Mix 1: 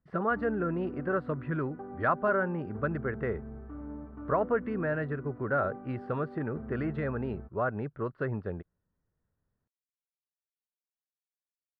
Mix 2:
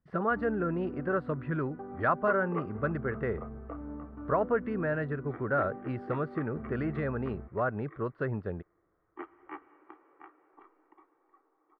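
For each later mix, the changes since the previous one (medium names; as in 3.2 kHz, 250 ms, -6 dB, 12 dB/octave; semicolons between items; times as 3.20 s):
second sound: unmuted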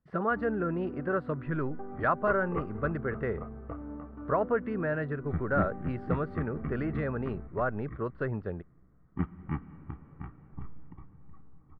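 second sound: remove elliptic high-pass 330 Hz, stop band 40 dB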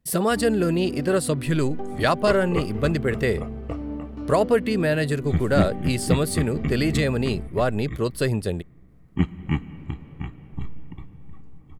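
master: remove four-pole ladder low-pass 1.6 kHz, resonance 55%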